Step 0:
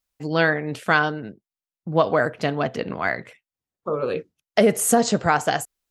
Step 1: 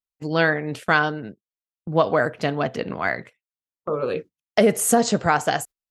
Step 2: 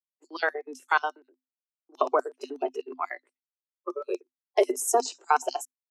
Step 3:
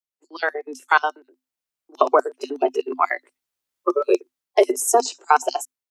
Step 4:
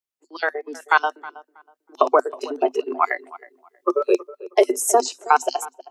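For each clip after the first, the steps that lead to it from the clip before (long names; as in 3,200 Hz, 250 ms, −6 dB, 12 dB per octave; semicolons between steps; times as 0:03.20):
noise gate −37 dBFS, range −17 dB
auto-filter high-pass square 8.2 Hz 370–5,300 Hz; Chebyshev high-pass with heavy ripple 250 Hz, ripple 9 dB; noise reduction from a noise print of the clip's start 17 dB
automatic gain control gain up to 15 dB; level −1 dB
tape delay 319 ms, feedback 25%, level −17 dB, low-pass 1,600 Hz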